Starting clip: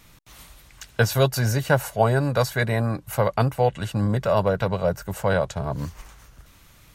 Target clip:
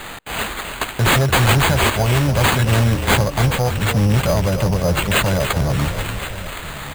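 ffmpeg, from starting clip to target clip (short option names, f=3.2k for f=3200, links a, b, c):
-filter_complex "[0:a]bandreject=f=470:w=12,alimiter=limit=-12.5dB:level=0:latency=1:release=414,lowshelf=f=410:g=11,asplit=2[a][b];[b]aecho=0:1:1067:0.126[c];[a][c]amix=inputs=2:normalize=0,aexciter=amount=12.4:drive=7.1:freq=4.9k,asoftclip=type=tanh:threshold=-12dB,asplit=2[d][e];[e]asplit=5[f][g][h][i][j];[f]adelay=290,afreqshift=-34,volume=-8.5dB[k];[g]adelay=580,afreqshift=-68,volume=-15.4dB[l];[h]adelay=870,afreqshift=-102,volume=-22.4dB[m];[i]adelay=1160,afreqshift=-136,volume=-29.3dB[n];[j]adelay=1450,afreqshift=-170,volume=-36.2dB[o];[k][l][m][n][o]amix=inputs=5:normalize=0[p];[d][p]amix=inputs=2:normalize=0,acrusher=samples=8:mix=1:aa=0.000001,volume=1.5dB"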